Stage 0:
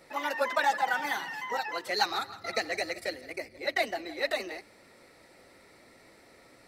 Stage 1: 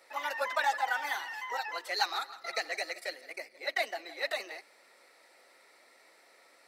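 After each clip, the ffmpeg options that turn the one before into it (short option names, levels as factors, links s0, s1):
-af "highpass=600,volume=0.794"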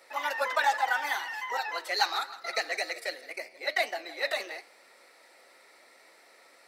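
-af "flanger=delay=7.2:depth=7.2:regen=-84:speed=0.77:shape=triangular,volume=2.51"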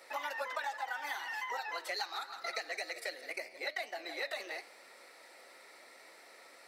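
-af "acompressor=threshold=0.0141:ratio=6,volume=1.12"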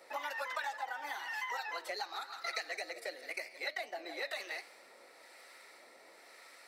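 -filter_complex "[0:a]acrossover=split=940[s0][s1];[s0]aeval=exprs='val(0)*(1-0.5/2+0.5/2*cos(2*PI*1*n/s))':c=same[s2];[s1]aeval=exprs='val(0)*(1-0.5/2-0.5/2*cos(2*PI*1*n/s))':c=same[s3];[s2][s3]amix=inputs=2:normalize=0,volume=1.19"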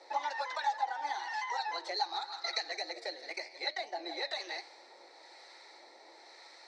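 -af "highpass=330,equalizer=f=340:t=q:w=4:g=9,equalizer=f=850:t=q:w=4:g=10,equalizer=f=1300:t=q:w=4:g=-5,equalizer=f=2800:t=q:w=4:g=-6,equalizer=f=4100:t=q:w=4:g=9,equalizer=f=6000:t=q:w=4:g=4,lowpass=f=6800:w=0.5412,lowpass=f=6800:w=1.3066"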